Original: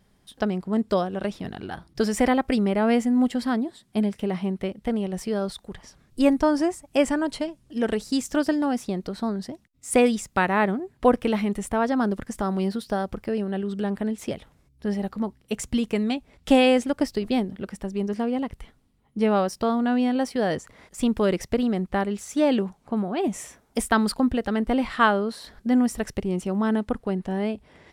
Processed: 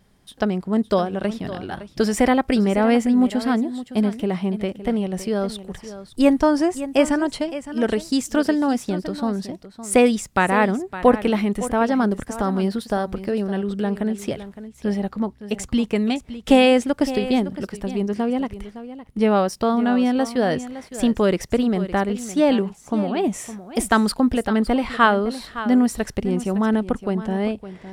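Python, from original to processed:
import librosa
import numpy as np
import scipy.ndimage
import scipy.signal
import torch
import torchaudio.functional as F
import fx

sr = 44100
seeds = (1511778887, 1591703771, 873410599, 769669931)

y = fx.high_shelf(x, sr, hz=7800.0, db=-6.0, at=(14.99, 15.96))
y = y + 10.0 ** (-13.5 / 20.0) * np.pad(y, (int(562 * sr / 1000.0), 0))[:len(y)]
y = y * 10.0 ** (3.5 / 20.0)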